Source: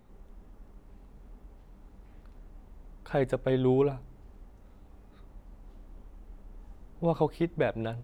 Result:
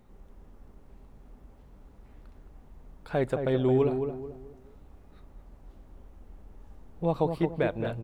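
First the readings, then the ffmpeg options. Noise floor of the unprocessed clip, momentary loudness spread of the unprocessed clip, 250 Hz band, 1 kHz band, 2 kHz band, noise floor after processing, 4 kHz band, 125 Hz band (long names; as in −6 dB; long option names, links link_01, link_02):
−55 dBFS, 7 LU, +1.0 dB, +0.5 dB, +0.5 dB, −55 dBFS, 0.0 dB, +1.0 dB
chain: -filter_complex "[0:a]asplit=2[link_01][link_02];[link_02]adelay=218,lowpass=frequency=1200:poles=1,volume=-6dB,asplit=2[link_03][link_04];[link_04]adelay=218,lowpass=frequency=1200:poles=1,volume=0.37,asplit=2[link_05][link_06];[link_06]adelay=218,lowpass=frequency=1200:poles=1,volume=0.37,asplit=2[link_07][link_08];[link_08]adelay=218,lowpass=frequency=1200:poles=1,volume=0.37[link_09];[link_01][link_03][link_05][link_07][link_09]amix=inputs=5:normalize=0"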